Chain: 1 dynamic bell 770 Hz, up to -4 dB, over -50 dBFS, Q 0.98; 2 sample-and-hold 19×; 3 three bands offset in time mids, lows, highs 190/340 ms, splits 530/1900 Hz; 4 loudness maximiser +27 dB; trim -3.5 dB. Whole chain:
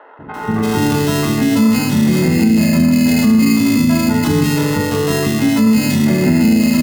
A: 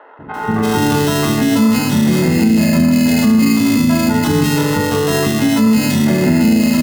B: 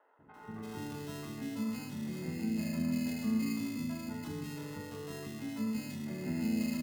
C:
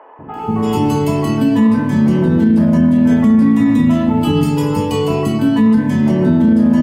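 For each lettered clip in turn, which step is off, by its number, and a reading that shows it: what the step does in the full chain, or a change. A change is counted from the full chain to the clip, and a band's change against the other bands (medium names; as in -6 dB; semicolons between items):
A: 1, 1 kHz band +2.0 dB; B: 4, crest factor change +5.5 dB; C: 2, distortion -7 dB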